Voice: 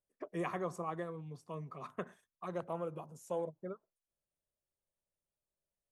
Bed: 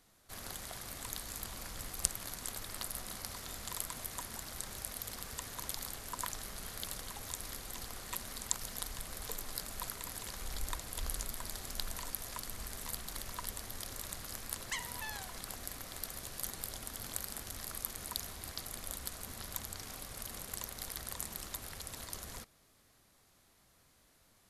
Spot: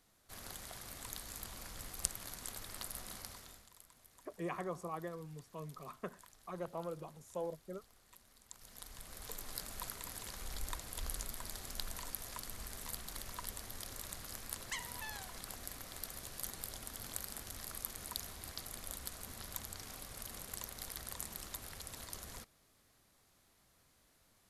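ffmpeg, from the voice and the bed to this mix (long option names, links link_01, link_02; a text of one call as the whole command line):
ffmpeg -i stem1.wav -i stem2.wav -filter_complex "[0:a]adelay=4050,volume=-3dB[link_01];[1:a]volume=14dB,afade=type=out:start_time=3.16:duration=0.53:silence=0.141254,afade=type=in:start_time=8.48:duration=1.07:silence=0.125893[link_02];[link_01][link_02]amix=inputs=2:normalize=0" out.wav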